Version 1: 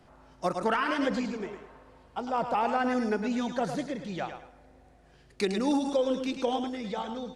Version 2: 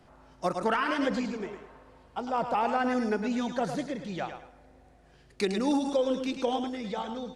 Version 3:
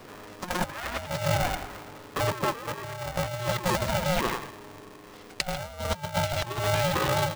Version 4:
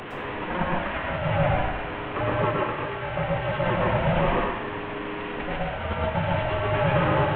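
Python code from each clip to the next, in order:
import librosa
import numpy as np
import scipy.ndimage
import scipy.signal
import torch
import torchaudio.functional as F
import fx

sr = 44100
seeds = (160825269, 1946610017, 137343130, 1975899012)

y1 = x
y2 = fx.over_compress(y1, sr, threshold_db=-34.0, ratio=-0.5)
y2 = y2 * np.sign(np.sin(2.0 * np.pi * 360.0 * np.arange(len(y2)) / sr))
y2 = F.gain(torch.from_numpy(y2), 6.0).numpy()
y3 = fx.delta_mod(y2, sr, bps=16000, step_db=-30.5)
y3 = fx.rev_plate(y3, sr, seeds[0], rt60_s=0.7, hf_ratio=0.65, predelay_ms=100, drr_db=-2.5)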